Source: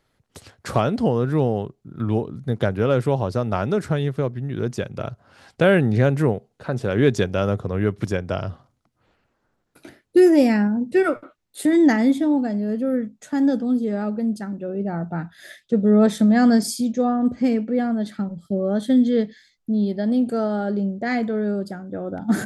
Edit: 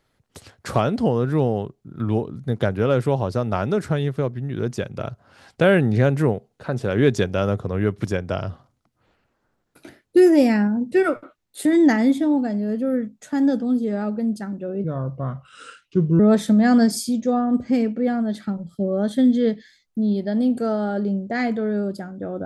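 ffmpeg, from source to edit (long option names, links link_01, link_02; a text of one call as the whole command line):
ffmpeg -i in.wav -filter_complex "[0:a]asplit=3[link_01][link_02][link_03];[link_01]atrim=end=14.844[link_04];[link_02]atrim=start=14.84:end=15.91,asetpts=PTS-STARTPTS,asetrate=34839,aresample=44100,atrim=end_sample=59730,asetpts=PTS-STARTPTS[link_05];[link_03]atrim=start=15.906[link_06];[link_04][link_05]acrossfade=duration=0.004:curve1=hsin:curve2=hsin[link_07];[link_07][link_06]acrossfade=duration=0.004:curve1=hsin:curve2=hsin" out.wav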